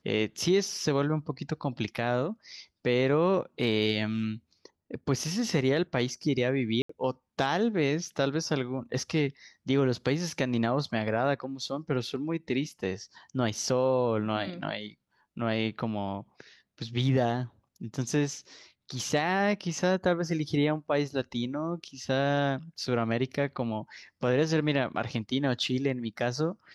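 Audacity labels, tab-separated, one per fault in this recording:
6.820000	6.890000	drop-out 74 ms

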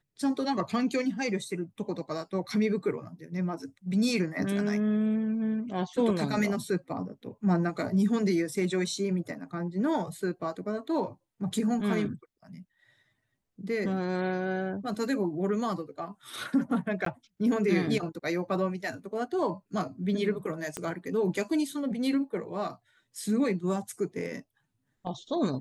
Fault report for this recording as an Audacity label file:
17.050000	17.060000	drop-out 13 ms
20.770000	20.770000	click −19 dBFS

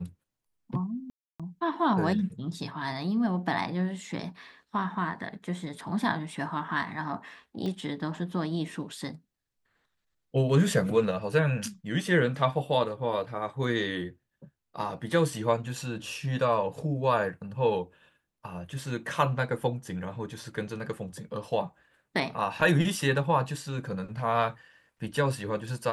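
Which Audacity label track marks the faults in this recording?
1.100000	1.400000	drop-out 296 ms
7.660000	7.660000	click −24 dBFS

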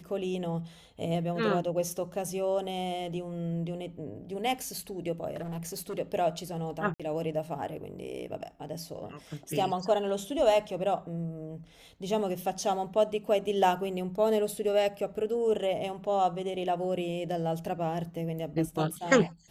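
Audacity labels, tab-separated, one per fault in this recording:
5.330000	5.990000	clipping −32.5 dBFS
6.940000	7.000000	drop-out 56 ms

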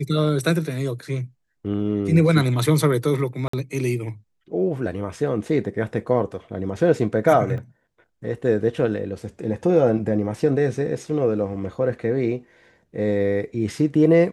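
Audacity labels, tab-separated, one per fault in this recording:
3.480000	3.530000	drop-out 54 ms
7.580000	7.580000	drop-out 3.1 ms

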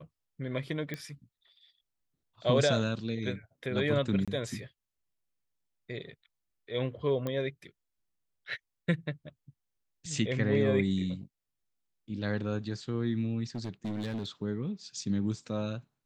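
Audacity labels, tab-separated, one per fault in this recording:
0.940000	0.940000	click −22 dBFS
4.250000	4.280000	drop-out 26 ms
7.270000	7.270000	click −21 dBFS
13.550000	14.260000	clipping −31 dBFS

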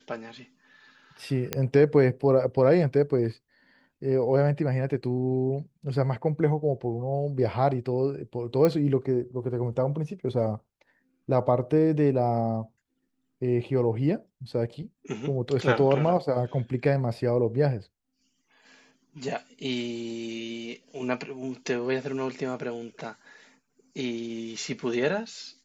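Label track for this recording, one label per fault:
1.530000	1.530000	click −10 dBFS
8.650000	8.650000	click −12 dBFS

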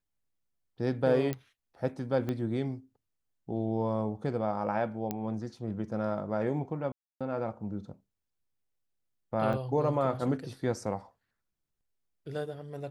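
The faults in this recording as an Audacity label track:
1.330000	1.330000	click −19 dBFS
2.290000	2.290000	click −21 dBFS
5.110000	5.110000	click −18 dBFS
6.920000	7.210000	drop-out 286 ms
9.530000	9.540000	drop-out 5.3 ms

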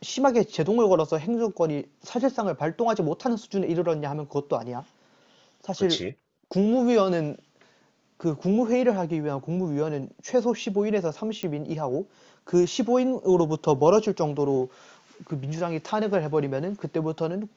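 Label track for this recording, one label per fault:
11.430000	11.430000	click −17 dBFS

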